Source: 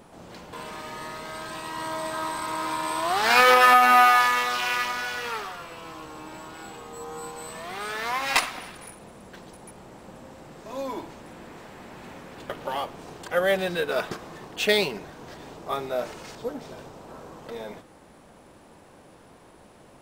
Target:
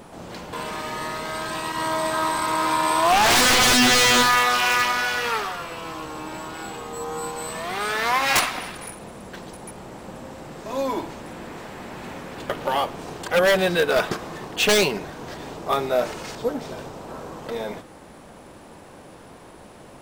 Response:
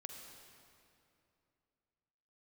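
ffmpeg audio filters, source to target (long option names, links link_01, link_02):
-filter_complex "[0:a]asettb=1/sr,asplit=3[link_01][link_02][link_03];[link_01]atrim=end=1.724[link_04];[link_02]atrim=start=1.72:end=4.23,asetpts=PTS-STARTPTS,afade=type=in:duration=0.004:curve=qsin,afade=type=out:start_time=2.506:duration=0.004:curve=qsin,adynamicequalizer=threshold=0.0355:dfrequency=800:dqfactor=1.5:tfrequency=800:tqfactor=1.5:attack=5:release=100:ratio=0.375:range=2.5:mode=boostabove:tftype=bell[link_05];[link_03]atrim=start=4.226[link_06];[link_04][link_05]acrossfade=duration=0.004:curve1=hsin:curve2=qsin[link_07];[link_07][link_06]acrossfade=duration=0.004:curve1=qsin:curve2=hsin,aeval=exprs='0.119*(abs(mod(val(0)/0.119+3,4)-2)-1)':channel_layout=same,volume=7dB"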